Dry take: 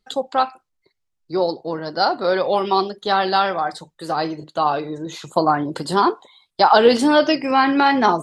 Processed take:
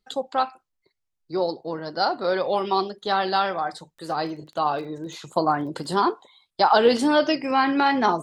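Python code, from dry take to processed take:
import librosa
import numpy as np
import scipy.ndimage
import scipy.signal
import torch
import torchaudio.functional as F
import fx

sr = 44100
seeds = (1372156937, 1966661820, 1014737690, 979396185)

y = fx.dmg_crackle(x, sr, seeds[0], per_s=17.0, level_db=-32.0, at=(3.73, 5.9), fade=0.02)
y = y * 10.0 ** (-4.5 / 20.0)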